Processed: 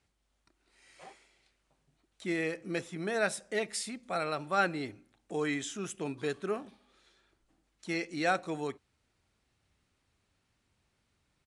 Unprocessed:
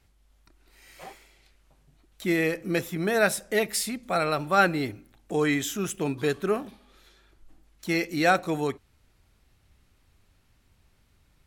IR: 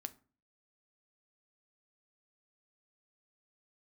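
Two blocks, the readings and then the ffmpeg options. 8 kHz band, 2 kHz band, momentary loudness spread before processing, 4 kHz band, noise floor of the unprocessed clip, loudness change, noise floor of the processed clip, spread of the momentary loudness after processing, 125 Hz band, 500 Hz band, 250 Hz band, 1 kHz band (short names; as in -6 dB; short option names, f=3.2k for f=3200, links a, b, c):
-8.0 dB, -7.5 dB, 11 LU, -7.5 dB, -65 dBFS, -8.0 dB, -78 dBFS, 11 LU, -10.0 dB, -8.0 dB, -8.5 dB, -7.5 dB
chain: -af "highpass=f=140:p=1,aresample=22050,aresample=44100,volume=-7.5dB"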